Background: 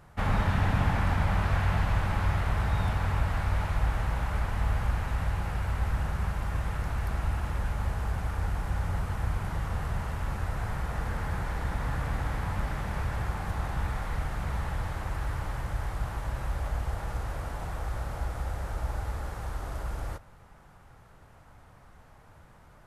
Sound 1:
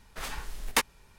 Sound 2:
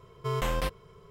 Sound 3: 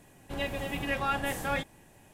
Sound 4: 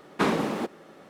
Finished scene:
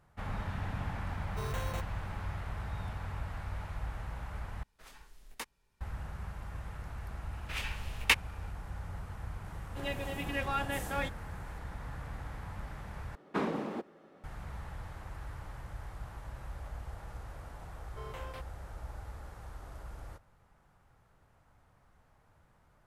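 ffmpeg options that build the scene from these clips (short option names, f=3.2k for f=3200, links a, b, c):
-filter_complex "[2:a]asplit=2[a][b];[1:a]asplit=2[c][d];[0:a]volume=-11.5dB[e];[a]acrusher=samples=9:mix=1:aa=0.000001[f];[d]equalizer=f=2.6k:t=o:w=1:g=15[g];[4:a]highshelf=f=3k:g=-10.5[h];[b]bass=f=250:g=-12,treble=f=4k:g=-7[i];[e]asplit=3[j][k][l];[j]atrim=end=4.634[m];[c]atrim=end=1.18,asetpts=PTS-STARTPTS,volume=-17.5dB[n];[k]atrim=start=5.806:end=13.154[o];[h]atrim=end=1.09,asetpts=PTS-STARTPTS,volume=-8dB[p];[l]atrim=start=14.236[q];[f]atrim=end=1.1,asetpts=PTS-STARTPTS,volume=-10dB,afade=t=in:d=0.004:c=hsin,afade=t=out:st=1.096:d=0.004:c=hsin,adelay=1120[r];[g]atrim=end=1.18,asetpts=PTS-STARTPTS,volume=-8dB,afade=t=in:d=0.004:c=hsin,afade=t=out:st=1.176:d=0.004:c=hsin,adelay=7330[s];[3:a]atrim=end=2.13,asetpts=PTS-STARTPTS,volume=-4dB,afade=t=in:d=0.004:c=hsin,afade=t=out:st=2.126:d=0.004:c=hsin,adelay=417186S[t];[i]atrim=end=1.1,asetpts=PTS-STARTPTS,volume=-13.5dB,afade=t=in:d=0.004:c=hsin,afade=t=out:st=1.096:d=0.004:c=hsin,adelay=17720[u];[m][n]acrossfade=d=0.004:c1=hsin:c2=hsin[v];[v][o]acrossfade=d=0.004:c1=hsin:c2=hsin[w];[w][p]acrossfade=d=0.004:c1=hsin:c2=hsin[x];[x][q]acrossfade=d=0.004:c1=hsin:c2=hsin[y];[y][r][s][t][u]amix=inputs=5:normalize=0"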